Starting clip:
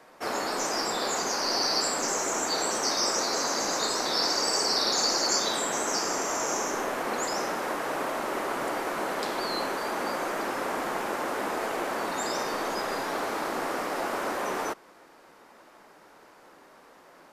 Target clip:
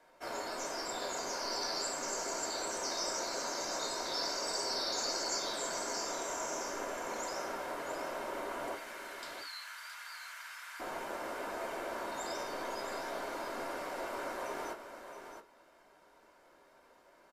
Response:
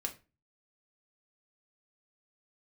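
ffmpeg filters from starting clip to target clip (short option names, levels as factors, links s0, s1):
-filter_complex "[0:a]asettb=1/sr,asplit=3[s0][s1][s2];[s0]atrim=end=8.754[s3];[s1]atrim=start=8.75:end=10.8,asetpts=PTS-STARTPTS,afade=t=in:d=0.004:c=qsin,afade=t=out:st=2.046:d=0.004:c=qsin,highpass=f=1400:w=0.5412,highpass=f=1400:w=1.3066[s4];[s2]atrim=start=10.796[s5];[s3][s4]acrossfade=d=0.004:c1=hsin:c2=qsin[s6];[s6][s5]acrossfade=d=0.004:c1=qsin:c2=hsin,aecho=1:1:668:0.355[s7];[1:a]atrim=start_sample=2205,atrim=end_sample=6615,asetrate=83790,aresample=44100[s8];[s7][s8]afir=irnorm=-1:irlink=0,volume=0.562"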